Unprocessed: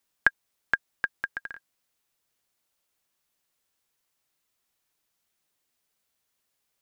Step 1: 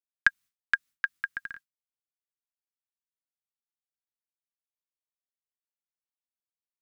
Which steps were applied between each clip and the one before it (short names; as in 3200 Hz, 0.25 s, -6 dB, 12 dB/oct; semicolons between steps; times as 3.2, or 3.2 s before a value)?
expander -42 dBFS; band shelf 580 Hz -11 dB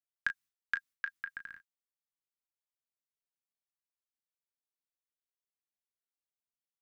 limiter -8.5 dBFS, peak gain reduction 3.5 dB; on a send: early reflections 22 ms -13 dB, 35 ms -10.5 dB; on the sum: gain -8 dB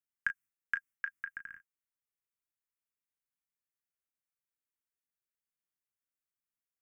fixed phaser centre 1700 Hz, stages 4